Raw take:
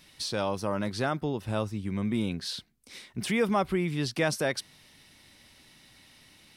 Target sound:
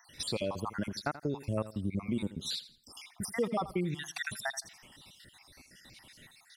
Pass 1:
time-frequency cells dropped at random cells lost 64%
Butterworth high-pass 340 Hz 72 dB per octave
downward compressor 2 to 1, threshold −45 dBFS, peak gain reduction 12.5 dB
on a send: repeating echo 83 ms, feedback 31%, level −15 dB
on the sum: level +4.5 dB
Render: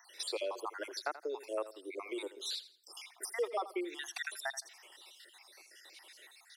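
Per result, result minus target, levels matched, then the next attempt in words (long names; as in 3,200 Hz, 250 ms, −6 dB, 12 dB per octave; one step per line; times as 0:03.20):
250 Hz band −7.5 dB; downward compressor: peak gain reduction +2.5 dB
time-frequency cells dropped at random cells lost 64%
downward compressor 2 to 1, threshold −45 dBFS, peak gain reduction 12.5 dB
on a send: repeating echo 83 ms, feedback 31%, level −15 dB
on the sum: level +4.5 dB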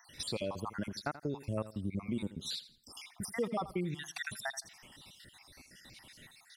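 downward compressor: peak gain reduction +3 dB
time-frequency cells dropped at random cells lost 64%
downward compressor 2 to 1, threshold −39 dBFS, peak gain reduction 9.5 dB
on a send: repeating echo 83 ms, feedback 31%, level −15 dB
on the sum: level +4.5 dB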